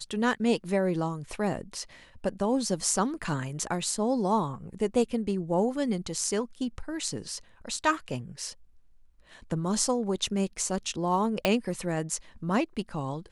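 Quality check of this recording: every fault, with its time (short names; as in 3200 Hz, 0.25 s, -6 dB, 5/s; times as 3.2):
11.45 pop -9 dBFS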